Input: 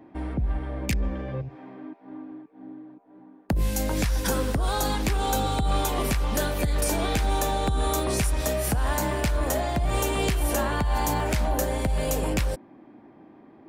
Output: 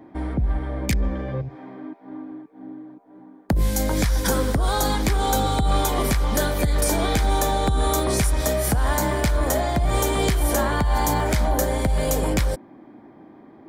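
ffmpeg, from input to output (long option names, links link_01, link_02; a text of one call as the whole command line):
ffmpeg -i in.wav -af "bandreject=frequency=2700:width=6.4,volume=4dB" out.wav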